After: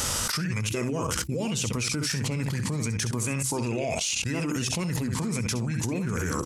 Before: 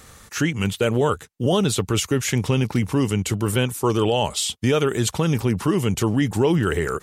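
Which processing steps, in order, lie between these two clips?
on a send: single-tap delay 72 ms −9.5 dB
on the sum: output level in coarse steps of 14 dB
mains-hum notches 60/120/180/240/300 Hz
formants moved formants −5 semitones
high-shelf EQ 4,000 Hz +10 dB
wrong playback speed 44.1 kHz file played as 48 kHz
in parallel at −9 dB: asymmetric clip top −22 dBFS
on the sum: envelope flattener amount 100%
level −8.5 dB

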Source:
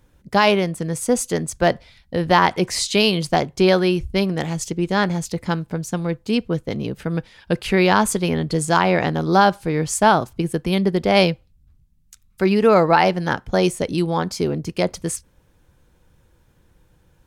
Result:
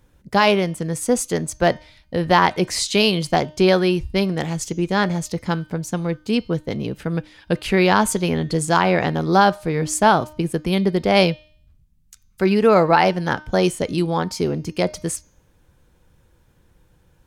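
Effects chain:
hum removal 305.9 Hz, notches 22

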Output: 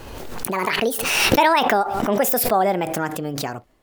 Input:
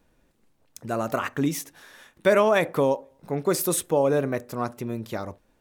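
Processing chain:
gliding playback speed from 174% → 119%
background raised ahead of every attack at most 29 dB per second
level +3 dB

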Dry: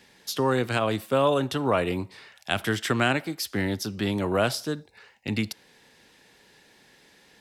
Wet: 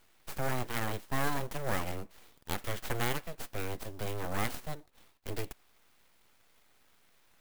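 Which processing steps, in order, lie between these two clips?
full-wave rectification
converter with an unsteady clock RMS 0.041 ms
level −7 dB

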